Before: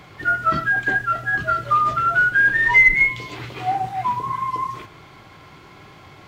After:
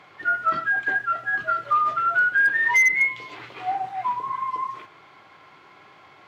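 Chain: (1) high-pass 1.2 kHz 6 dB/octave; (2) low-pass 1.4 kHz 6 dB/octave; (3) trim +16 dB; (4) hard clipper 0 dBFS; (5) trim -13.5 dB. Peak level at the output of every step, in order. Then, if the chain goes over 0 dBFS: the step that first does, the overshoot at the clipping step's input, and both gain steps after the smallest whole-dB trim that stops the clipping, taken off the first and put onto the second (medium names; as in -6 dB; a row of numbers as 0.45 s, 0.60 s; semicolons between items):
-6.5 dBFS, -11.5 dBFS, +4.5 dBFS, 0.0 dBFS, -13.5 dBFS; step 3, 4.5 dB; step 3 +11 dB, step 5 -8.5 dB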